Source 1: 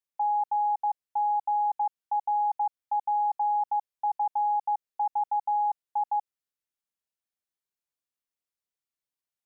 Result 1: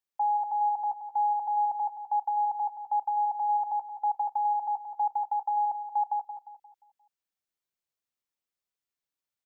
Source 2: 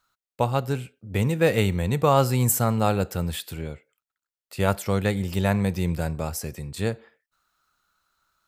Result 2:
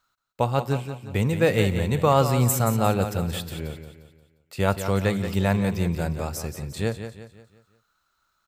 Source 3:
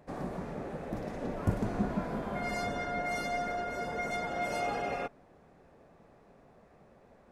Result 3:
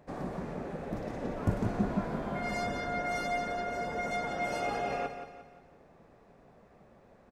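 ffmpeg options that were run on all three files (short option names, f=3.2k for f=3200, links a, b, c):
-filter_complex "[0:a]equalizer=f=11k:t=o:w=0.49:g=-5,asplit=2[a][b];[b]aecho=0:1:176|352|528|704|880:0.335|0.141|0.0591|0.0248|0.0104[c];[a][c]amix=inputs=2:normalize=0"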